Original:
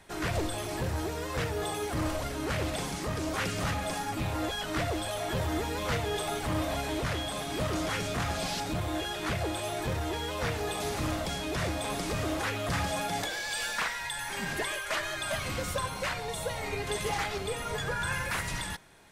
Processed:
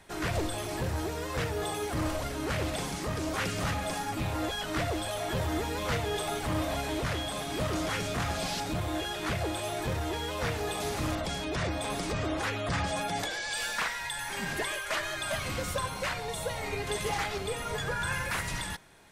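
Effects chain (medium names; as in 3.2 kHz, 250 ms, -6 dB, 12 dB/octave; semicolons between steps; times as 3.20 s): 11.15–13.57 s: spectral gate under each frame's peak -30 dB strong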